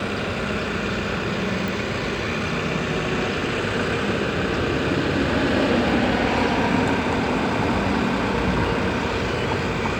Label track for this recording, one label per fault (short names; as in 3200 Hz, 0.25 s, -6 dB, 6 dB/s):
1.680000	1.680000	pop